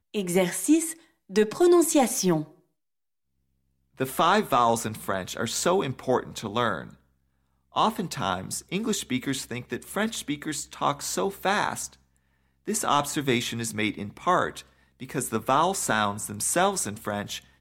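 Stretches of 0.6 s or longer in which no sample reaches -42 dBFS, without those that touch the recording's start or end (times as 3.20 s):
2.47–3.97 s
6.94–7.75 s
11.94–12.68 s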